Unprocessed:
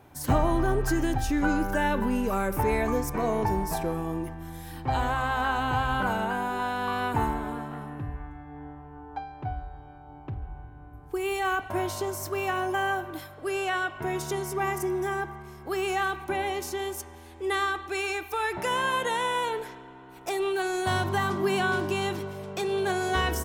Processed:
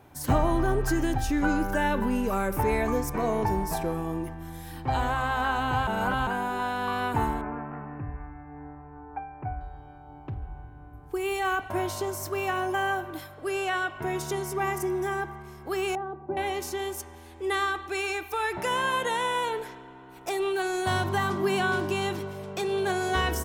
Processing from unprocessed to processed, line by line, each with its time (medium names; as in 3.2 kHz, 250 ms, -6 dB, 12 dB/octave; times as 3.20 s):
5.87–6.27 s: reverse
7.41–9.61 s: elliptic low-pass 2.5 kHz
15.95–16.37 s: Chebyshev band-pass 110–630 Hz